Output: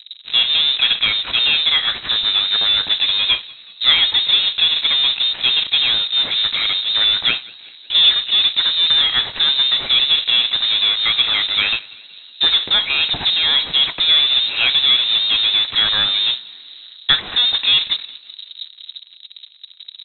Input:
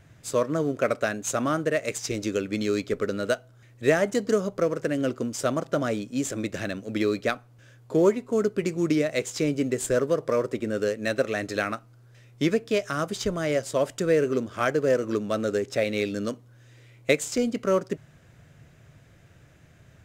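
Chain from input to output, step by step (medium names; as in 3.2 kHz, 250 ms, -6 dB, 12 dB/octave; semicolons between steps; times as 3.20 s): level-controlled noise filter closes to 630 Hz, open at -18.5 dBFS; in parallel at -11.5 dB: fuzz box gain 45 dB, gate -51 dBFS; on the sum: frequency inversion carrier 3.9 kHz; frequency-shifting echo 186 ms, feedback 59%, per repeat +67 Hz, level -23 dB; trim +4 dB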